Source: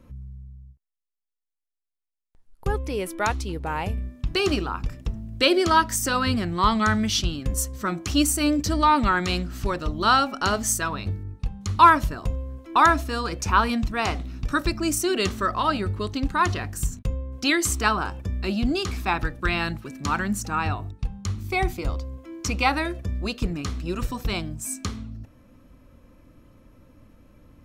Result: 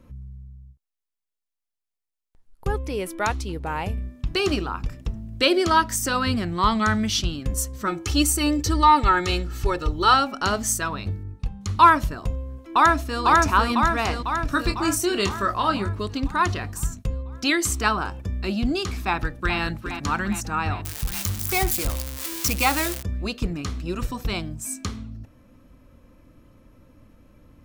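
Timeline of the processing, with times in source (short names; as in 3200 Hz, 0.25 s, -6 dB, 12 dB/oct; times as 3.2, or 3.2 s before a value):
7.87–10.14 comb 2.3 ms, depth 71%
12.6–13.22 echo throw 0.5 s, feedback 60%, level -0.5 dB
14.5–15.89 doubler 25 ms -8 dB
19.08–19.58 echo throw 0.41 s, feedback 65%, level -9 dB
20.85–23.03 switching spikes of -15.5 dBFS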